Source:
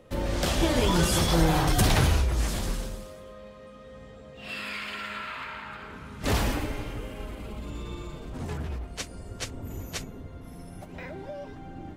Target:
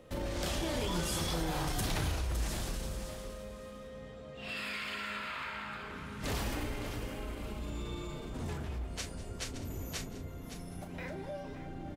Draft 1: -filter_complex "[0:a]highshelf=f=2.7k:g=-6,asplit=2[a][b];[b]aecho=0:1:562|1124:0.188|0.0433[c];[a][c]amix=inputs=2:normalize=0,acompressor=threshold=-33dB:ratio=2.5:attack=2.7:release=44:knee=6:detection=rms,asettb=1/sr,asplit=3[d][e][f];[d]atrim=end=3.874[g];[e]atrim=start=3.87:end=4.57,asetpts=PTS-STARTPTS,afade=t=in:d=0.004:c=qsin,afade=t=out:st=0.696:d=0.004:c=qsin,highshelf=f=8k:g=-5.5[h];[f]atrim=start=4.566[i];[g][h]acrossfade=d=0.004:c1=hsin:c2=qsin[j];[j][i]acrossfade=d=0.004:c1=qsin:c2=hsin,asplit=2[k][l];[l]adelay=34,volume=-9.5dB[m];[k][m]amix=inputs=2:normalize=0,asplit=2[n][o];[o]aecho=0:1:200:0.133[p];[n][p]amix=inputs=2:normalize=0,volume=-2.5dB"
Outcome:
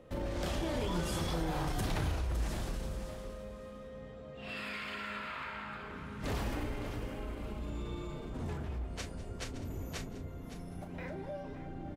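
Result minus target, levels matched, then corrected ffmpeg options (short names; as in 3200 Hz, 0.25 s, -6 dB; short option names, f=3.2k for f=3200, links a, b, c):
4000 Hz band -3.5 dB
-filter_complex "[0:a]highshelf=f=2.7k:g=2.5,asplit=2[a][b];[b]aecho=0:1:562|1124:0.188|0.0433[c];[a][c]amix=inputs=2:normalize=0,acompressor=threshold=-33dB:ratio=2.5:attack=2.7:release=44:knee=6:detection=rms,asettb=1/sr,asplit=3[d][e][f];[d]atrim=end=3.874[g];[e]atrim=start=3.87:end=4.57,asetpts=PTS-STARTPTS,afade=t=in:d=0.004:c=qsin,afade=t=out:st=0.696:d=0.004:c=qsin,highshelf=f=8k:g=-5.5[h];[f]atrim=start=4.566[i];[g][h]acrossfade=d=0.004:c1=hsin:c2=qsin[j];[j][i]acrossfade=d=0.004:c1=qsin:c2=hsin,asplit=2[k][l];[l]adelay=34,volume=-9.5dB[m];[k][m]amix=inputs=2:normalize=0,asplit=2[n][o];[o]aecho=0:1:200:0.133[p];[n][p]amix=inputs=2:normalize=0,volume=-2.5dB"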